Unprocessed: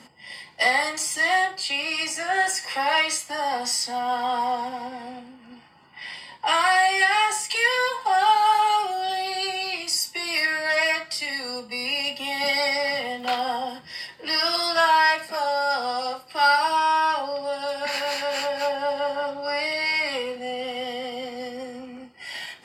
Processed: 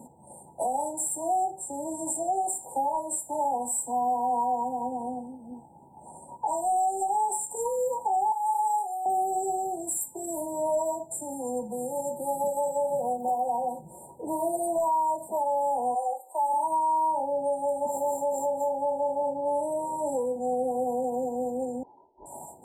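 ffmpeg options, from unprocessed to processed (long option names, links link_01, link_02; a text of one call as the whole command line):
ffmpeg -i in.wav -filter_complex "[0:a]asettb=1/sr,asplit=3[link_01][link_02][link_03];[link_01]atrim=end=8.324[link_04];[link_02]atrim=start=8.32:end=9.06,asetpts=PTS-STARTPTS,afade=type=in:duration=0.004:curve=qsin,afade=type=out:start_time=0.736:duration=0.004:curve=qsin,highpass=1100[link_05];[link_03]atrim=start=9.056[link_06];[link_04][link_05]acrossfade=duration=0.004:curve1=hsin:curve2=qsin[link_07];[link_07][link_06]acrossfade=duration=0.004:curve1=qsin:curve2=hsin,asettb=1/sr,asplit=3[link_08][link_09][link_10];[link_08]atrim=end=11.624[link_11];[link_09]atrim=start=11.62:end=13.99,asetpts=PTS-STARTPTS,afade=type=in:duration=0.004:curve=qsin,afade=type=out:start_time=2.366:duration=0.004:curve=qsin,aecho=1:1:5.6:0.65,atrim=end_sample=104517[link_12];[link_10]atrim=start=13.986[link_13];[link_11][link_12]acrossfade=duration=0.004:curve1=hsin:curve2=qsin[link_14];[link_14][link_13]acrossfade=duration=0.004:curve1=qsin:curve2=hsin,asplit=3[link_15][link_16][link_17];[link_15]afade=type=out:start_time=15.94:duration=0.02[link_18];[link_16]highpass=frequency=510:width=0.5412,highpass=frequency=510:width=1.3066,afade=type=in:start_time=15.94:duration=0.02,afade=type=out:start_time=16.52:duration=0.02[link_19];[link_17]afade=type=in:start_time=16.52:duration=0.02[link_20];[link_18][link_19][link_20]amix=inputs=3:normalize=0,asettb=1/sr,asplit=3[link_21][link_22][link_23];[link_21]atrim=end=21.834[link_24];[link_22]atrim=start=21.83:end=22.26,asetpts=PTS-STARTPTS,afade=type=in:duration=0.004:curve=qsin,afade=type=out:start_time=0.426:duration=0.004:curve=qsin,lowpass=frequency=2800:width_type=q:width=0.5098,lowpass=frequency=2800:width_type=q:width=0.6013,lowpass=frequency=2800:width_type=q:width=0.9,lowpass=frequency=2800:width_type=q:width=2.563,afreqshift=-3300[link_25];[link_23]atrim=start=22.256[link_26];[link_24][link_25]acrossfade=duration=0.004:curve1=hsin:curve2=qsin[link_27];[link_27][link_26]acrossfade=duration=0.004:curve1=qsin:curve2=hsin,acontrast=56,afftfilt=real='re*(1-between(b*sr/4096,990,7200))':imag='im*(1-between(b*sr/4096,990,7200))':win_size=4096:overlap=0.75,alimiter=limit=-17.5dB:level=0:latency=1:release=469,volume=-2dB" out.wav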